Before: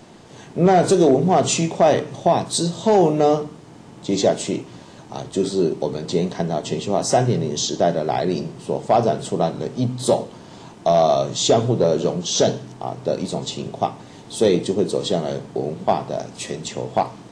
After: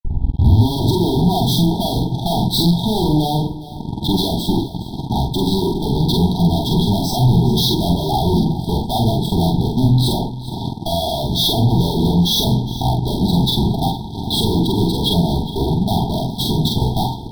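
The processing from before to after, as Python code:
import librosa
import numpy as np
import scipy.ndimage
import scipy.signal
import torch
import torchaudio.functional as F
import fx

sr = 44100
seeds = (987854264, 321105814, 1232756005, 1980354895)

p1 = fx.tape_start_head(x, sr, length_s=0.95)
p2 = fx.high_shelf(p1, sr, hz=5800.0, db=-12.0)
p3 = fx.rider(p2, sr, range_db=3, speed_s=0.5)
p4 = p2 + (p3 * 10.0 ** (-1.5 / 20.0))
p5 = fx.transient(p4, sr, attack_db=8, sustain_db=-5)
p6 = fx.fuzz(p5, sr, gain_db=28.0, gate_db=-37.0)
p7 = fx.brickwall_bandstop(p6, sr, low_hz=970.0, high_hz=3200.0)
p8 = fx.low_shelf(p7, sr, hz=150.0, db=6.0)
p9 = fx.fixed_phaser(p8, sr, hz=2000.0, stages=6)
p10 = fx.doubler(p9, sr, ms=46.0, db=-3.0)
y = p10 + 10.0 ** (-16.0 / 20.0) * np.pad(p10, (int(413 * sr / 1000.0), 0))[:len(p10)]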